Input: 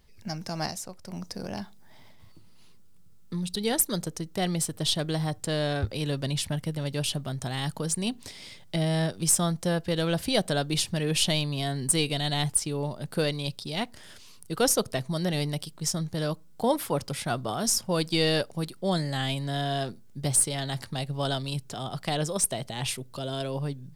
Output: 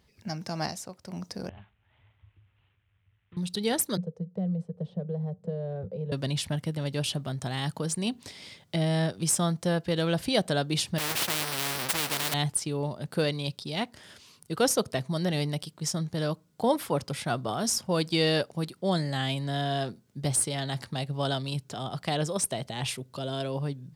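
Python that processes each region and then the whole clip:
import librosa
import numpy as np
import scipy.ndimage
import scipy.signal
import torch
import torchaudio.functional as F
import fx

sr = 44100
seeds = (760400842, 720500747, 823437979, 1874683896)

y = fx.chain(x, sr, fx.cvsd(bps=16000),
    fx.curve_eq(hz=(100.0, 170.0, 2200.0, 8100.0), db=(0, -24, -16, -3)),
    fx.env_flatten(amount_pct=100), at=(1.49, 3.37))
y = fx.chain(y, sr, fx.double_bandpass(hz=300.0, octaves=1.4),
    fx.low_shelf(hz=280.0, db=6.5),
    fx.band_squash(depth_pct=70), at=(3.97, 6.12))
y = fx.chain(y, sr, fx.halfwave_hold(),
    fx.peak_eq(hz=6700.0, db=-13.5, octaves=0.56),
    fx.spectral_comp(ratio=4.0), at=(10.98, 12.34))
y = scipy.signal.sosfilt(scipy.signal.butter(2, 68.0, 'highpass', fs=sr, output='sos'), y)
y = fx.high_shelf(y, sr, hz=7700.0, db=-6.5)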